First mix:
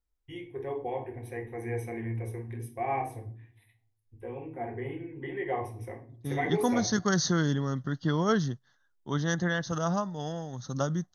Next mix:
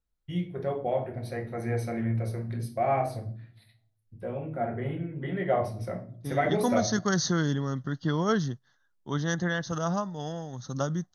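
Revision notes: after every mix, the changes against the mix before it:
first voice: remove phaser with its sweep stopped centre 910 Hz, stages 8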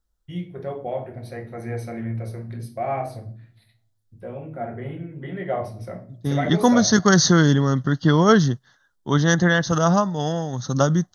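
second voice +11.0 dB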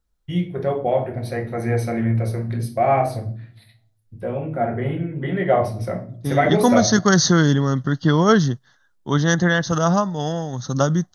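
first voice +8.5 dB

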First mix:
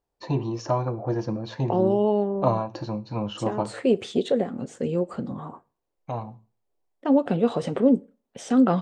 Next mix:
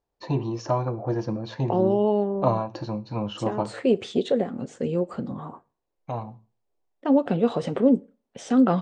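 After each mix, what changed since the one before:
master: add low-pass filter 7,600 Hz 12 dB per octave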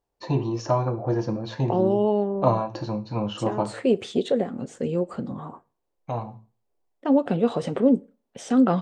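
first voice: send +6.0 dB
master: remove low-pass filter 7,600 Hz 12 dB per octave

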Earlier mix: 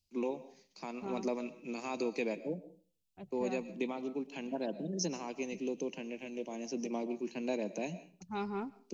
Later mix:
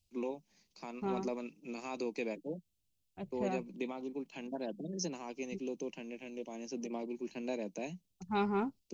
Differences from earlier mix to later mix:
second voice +6.5 dB
reverb: off

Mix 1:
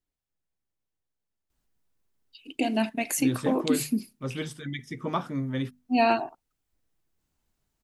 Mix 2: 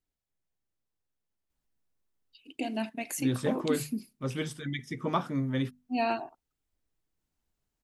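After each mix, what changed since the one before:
first voice −7.0 dB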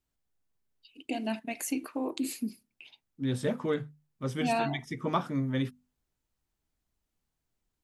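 first voice: entry −1.50 s

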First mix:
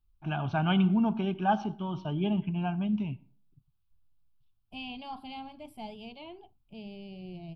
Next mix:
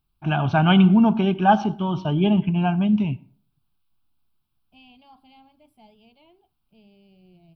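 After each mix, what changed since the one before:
first voice +10.0 dB
second voice −11.0 dB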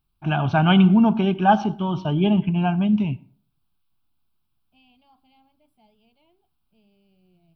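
second voice −7.5 dB

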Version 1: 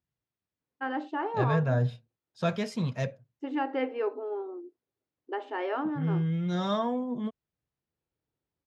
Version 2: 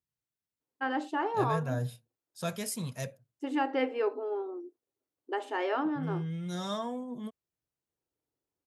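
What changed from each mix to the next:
second voice −7.0 dB
master: remove high-frequency loss of the air 190 metres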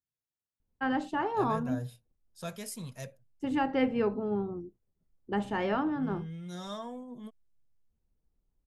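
first voice: remove linear-phase brick-wall high-pass 260 Hz
second voice −5.0 dB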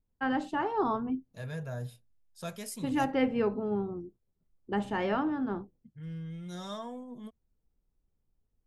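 first voice: entry −0.60 s

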